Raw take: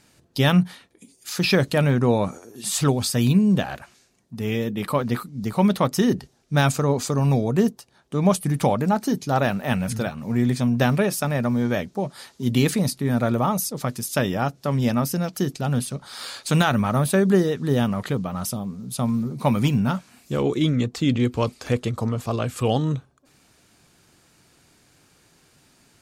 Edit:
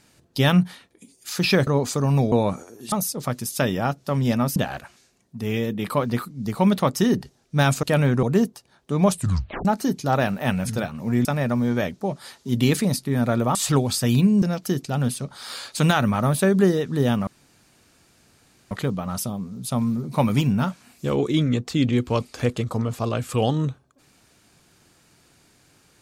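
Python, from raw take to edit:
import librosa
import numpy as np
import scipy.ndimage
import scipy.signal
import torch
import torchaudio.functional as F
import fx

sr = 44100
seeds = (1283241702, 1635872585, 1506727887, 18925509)

y = fx.edit(x, sr, fx.swap(start_s=1.67, length_s=0.4, other_s=6.81, other_length_s=0.65),
    fx.swap(start_s=2.67, length_s=0.87, other_s=13.49, other_length_s=1.64),
    fx.tape_stop(start_s=8.36, length_s=0.52),
    fx.cut(start_s=10.48, length_s=0.71),
    fx.insert_room_tone(at_s=17.98, length_s=1.44), tone=tone)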